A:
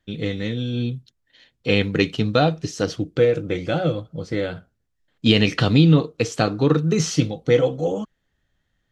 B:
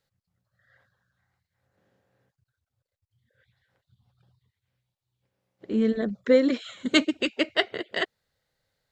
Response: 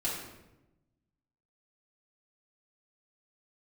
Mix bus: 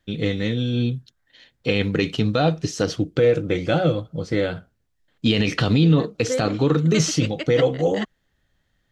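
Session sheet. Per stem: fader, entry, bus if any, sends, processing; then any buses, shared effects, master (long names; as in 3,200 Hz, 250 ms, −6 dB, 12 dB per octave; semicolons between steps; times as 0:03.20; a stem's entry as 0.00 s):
+2.5 dB, 0.00 s, no send, no processing
−5.0 dB, 0.00 s, no send, high-pass filter 320 Hz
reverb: not used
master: brickwall limiter −8.5 dBFS, peak gain reduction 8 dB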